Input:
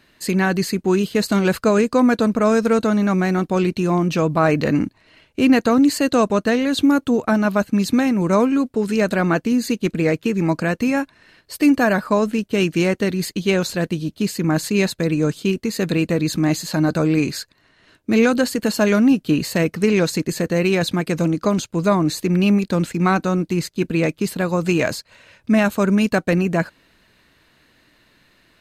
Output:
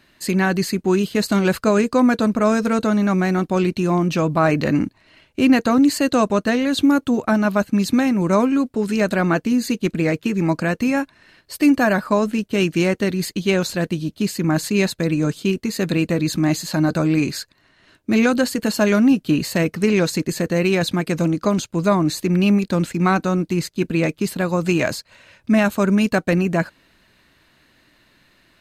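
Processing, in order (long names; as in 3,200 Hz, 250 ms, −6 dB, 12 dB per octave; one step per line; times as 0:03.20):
notch filter 460 Hz, Q 12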